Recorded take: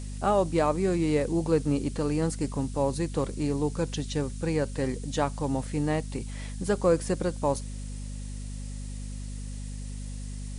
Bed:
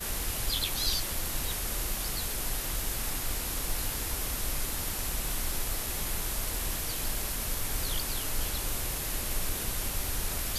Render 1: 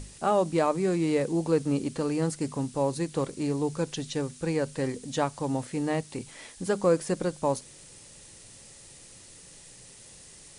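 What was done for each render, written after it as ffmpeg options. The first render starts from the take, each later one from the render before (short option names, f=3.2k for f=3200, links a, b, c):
-af "bandreject=f=50:t=h:w=6,bandreject=f=100:t=h:w=6,bandreject=f=150:t=h:w=6,bandreject=f=200:t=h:w=6,bandreject=f=250:t=h:w=6"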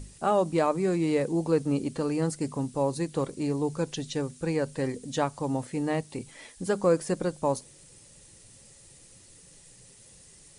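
-af "afftdn=nr=6:nf=-50"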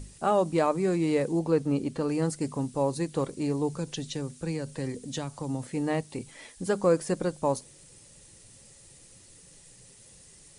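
-filter_complex "[0:a]asettb=1/sr,asplit=3[a][b][c];[a]atrim=end=1.394[d];[b]atrim=start=1.39:end=2.09,asetpts=PTS-STARTPTS,afade=t=in:d=0.004:c=qsin,afade=t=out:st=0.696:d=0.004:c=qsin,highshelf=f=5.4k:g=-6.5[e];[c]atrim=start=2.086[f];[d][e]acrossfade=d=0.004:c1=hsin:c2=qsin[g];[g][f]acrossfade=d=0.004:c1=qsin:c2=hsin,asettb=1/sr,asplit=3[h][i][j];[h]atrim=end=3.754[k];[i]atrim=start=3.75:end=5.69,asetpts=PTS-STARTPTS,afade=t=in:d=0.004:c=qsin,afade=t=out:st=1.936:d=0.004:c=qsin,acrossover=split=250|3000[l][m][n];[m]acompressor=threshold=-34dB:ratio=6:attack=3.2:release=140:knee=2.83:detection=peak[o];[l][o][n]amix=inputs=3:normalize=0[p];[j]atrim=start=5.686[q];[k][p]acrossfade=d=0.004:c1=hsin:c2=qsin[r];[r][q]acrossfade=d=0.004:c1=qsin:c2=hsin"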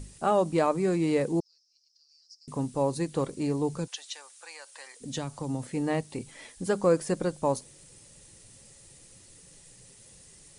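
-filter_complex "[0:a]asettb=1/sr,asplit=3[a][b][c];[a]atrim=end=1.404[d];[b]atrim=start=1.4:end=2.48,asetpts=PTS-STARTPTS,afade=t=in:d=0.004:c=qsin,afade=t=out:st=1.076:d=0.004:c=qsin,asuperpass=centerf=5200:order=4:qfactor=6.4[e];[c]atrim=start=2.476[f];[d][e]acrossfade=d=0.004:c1=hsin:c2=qsin[g];[g][f]acrossfade=d=0.004:c1=qsin:c2=hsin,asplit=3[h][i][j];[h]afade=t=out:st=3.86:d=0.02[k];[i]highpass=f=810:w=0.5412,highpass=f=810:w=1.3066,afade=t=in:st=3.86:d=0.02,afade=t=out:st=5:d=0.02[l];[j]afade=t=in:st=5:d=0.02[m];[k][l][m]amix=inputs=3:normalize=0"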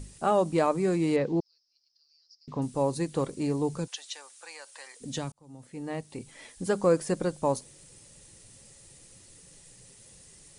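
-filter_complex "[0:a]asettb=1/sr,asplit=3[a][b][c];[a]atrim=end=1.164[d];[b]atrim=start=1.16:end=2.62,asetpts=PTS-STARTPTS,afade=t=in:d=0.004:c=qsin,afade=t=out:st=1.456:d=0.004:c=qsin,lowpass=f=4.8k:w=0.5412,lowpass=f=4.8k:w=1.3066[e];[c]atrim=start=2.616[f];[d][e]acrossfade=d=0.004:c1=hsin:c2=qsin[g];[g][f]acrossfade=d=0.004:c1=qsin:c2=hsin,asettb=1/sr,asplit=3[h][i][j];[h]atrim=end=4.034[k];[i]atrim=start=4.03:end=4.72,asetpts=PTS-STARTPTS,afade=t=in:d=0.004:c=qsin,afade=t=out:st=0.686:d=0.004:c=qsin,lowshelf=f=250:g=8.5[l];[j]atrim=start=4.716[m];[k][l]acrossfade=d=0.004:c1=hsin:c2=qsin[n];[n][m]acrossfade=d=0.004:c1=qsin:c2=hsin,asplit=2[o][p];[o]atrim=end=5.32,asetpts=PTS-STARTPTS,afade=t=out:st=5.316:d=0.004:c=hsin[q];[p]atrim=start=5.32,asetpts=PTS-STARTPTS,afade=t=in:d=1.3[r];[q][r]concat=n=2:v=0:a=1"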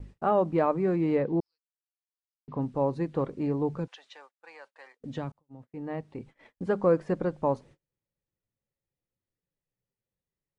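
-af "agate=range=-33dB:threshold=-47dB:ratio=16:detection=peak,lowpass=1.9k"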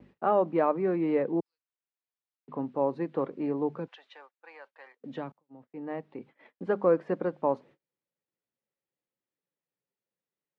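-filter_complex "[0:a]highpass=59,acrossover=split=190 3800:gain=0.112 1 0.112[a][b][c];[a][b][c]amix=inputs=3:normalize=0"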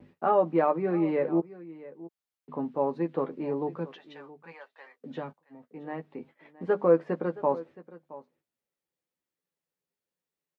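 -filter_complex "[0:a]asplit=2[a][b];[b]adelay=12,volume=-6dB[c];[a][c]amix=inputs=2:normalize=0,aecho=1:1:670:0.126"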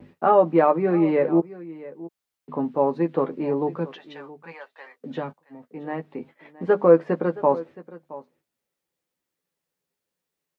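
-af "volume=6.5dB"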